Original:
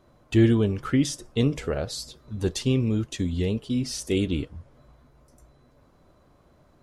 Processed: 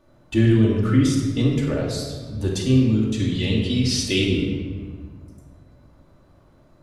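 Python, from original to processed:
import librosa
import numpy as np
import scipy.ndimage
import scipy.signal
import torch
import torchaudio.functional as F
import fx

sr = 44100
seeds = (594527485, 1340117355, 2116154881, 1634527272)

y = fx.peak_eq(x, sr, hz=3300.0, db=11.5, octaves=1.9, at=(3.19, 4.24))
y = fx.room_shoebox(y, sr, seeds[0], volume_m3=1500.0, walls='mixed', distance_m=2.5)
y = F.gain(torch.from_numpy(y), -2.0).numpy()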